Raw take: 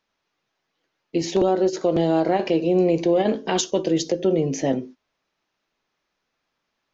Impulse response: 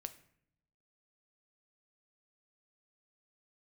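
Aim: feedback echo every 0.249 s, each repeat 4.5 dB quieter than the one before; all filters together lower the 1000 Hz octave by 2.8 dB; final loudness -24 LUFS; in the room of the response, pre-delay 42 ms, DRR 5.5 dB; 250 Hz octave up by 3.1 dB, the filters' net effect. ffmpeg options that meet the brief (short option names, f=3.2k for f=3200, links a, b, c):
-filter_complex "[0:a]equalizer=f=250:t=o:g=5.5,equalizer=f=1k:t=o:g=-5,aecho=1:1:249|498|747|996|1245|1494|1743|1992|2241:0.596|0.357|0.214|0.129|0.0772|0.0463|0.0278|0.0167|0.01,asplit=2[a][b];[1:a]atrim=start_sample=2205,adelay=42[c];[b][c]afir=irnorm=-1:irlink=0,volume=-2dB[d];[a][d]amix=inputs=2:normalize=0,volume=-6dB"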